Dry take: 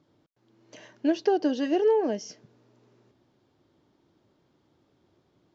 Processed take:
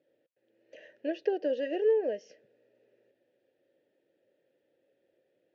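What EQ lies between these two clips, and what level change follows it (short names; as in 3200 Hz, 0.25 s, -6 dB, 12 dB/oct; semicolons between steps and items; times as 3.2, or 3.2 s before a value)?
vowel filter e; +6.5 dB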